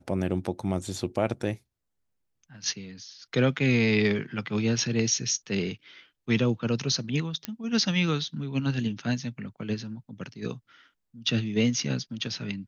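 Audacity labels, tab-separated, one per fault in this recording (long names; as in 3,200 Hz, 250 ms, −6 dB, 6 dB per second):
7.450000	7.450000	click −14 dBFS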